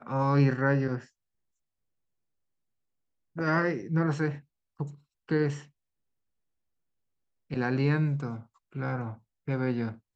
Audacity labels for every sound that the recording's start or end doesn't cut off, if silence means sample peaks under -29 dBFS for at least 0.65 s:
3.380000	5.540000	sound